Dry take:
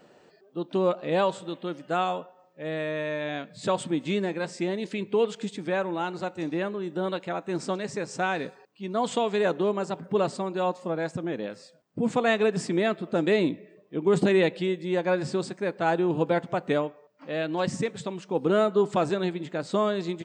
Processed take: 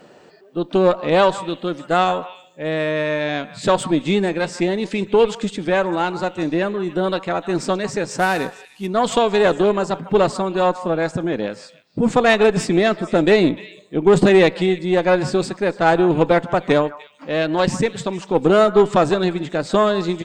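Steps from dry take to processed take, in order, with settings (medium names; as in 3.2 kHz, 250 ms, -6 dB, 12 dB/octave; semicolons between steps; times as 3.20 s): 8.18–8.87 s: CVSD coder 64 kbps; repeats whose band climbs or falls 150 ms, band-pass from 1.1 kHz, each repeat 1.4 oct, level -11.5 dB; Chebyshev shaper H 4 -20 dB, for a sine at -11.5 dBFS; trim +9 dB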